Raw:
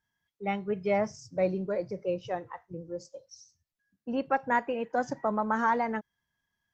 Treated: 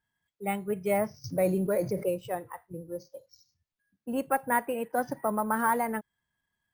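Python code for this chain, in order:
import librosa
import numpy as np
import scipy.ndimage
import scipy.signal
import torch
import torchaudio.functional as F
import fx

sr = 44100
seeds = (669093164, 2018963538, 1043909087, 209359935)

y = np.repeat(scipy.signal.resample_poly(x, 1, 4), 4)[:len(x)]
y = fx.env_flatten(y, sr, amount_pct=50, at=(1.24, 2.09))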